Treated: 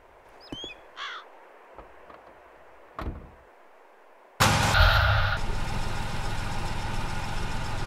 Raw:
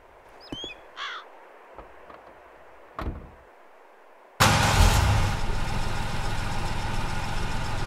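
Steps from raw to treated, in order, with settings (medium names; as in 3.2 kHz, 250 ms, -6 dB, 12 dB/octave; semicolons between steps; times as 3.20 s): 4.74–5.37 s: FFT filter 110 Hz 0 dB, 380 Hz -21 dB, 620 Hz +8 dB, 980 Hz -4 dB, 1.4 kHz +13 dB, 2.2 kHz -1 dB, 4 kHz +8 dB, 7.9 kHz -24 dB, 14 kHz 0 dB; trim -2 dB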